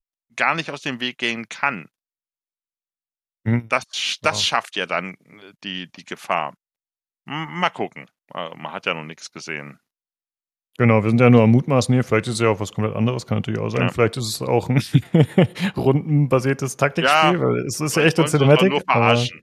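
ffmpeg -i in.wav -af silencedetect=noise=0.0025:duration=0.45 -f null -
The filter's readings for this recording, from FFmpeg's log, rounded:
silence_start: 1.88
silence_end: 3.45 | silence_duration: 1.57
silence_start: 6.54
silence_end: 7.27 | silence_duration: 0.72
silence_start: 9.77
silence_end: 10.75 | silence_duration: 0.98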